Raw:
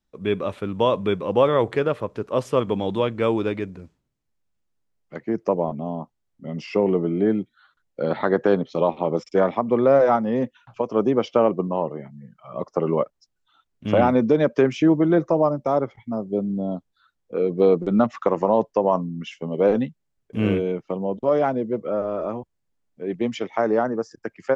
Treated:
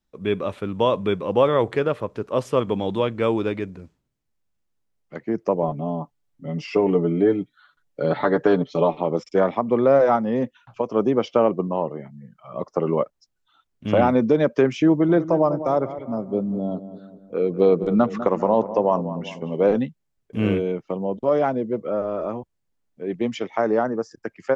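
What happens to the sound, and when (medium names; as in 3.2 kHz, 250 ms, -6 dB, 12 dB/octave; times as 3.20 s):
5.62–9.01 s: comb 6.9 ms, depth 68%
14.89–19.76 s: filtered feedback delay 198 ms, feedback 52%, low-pass 1.4 kHz, level -12 dB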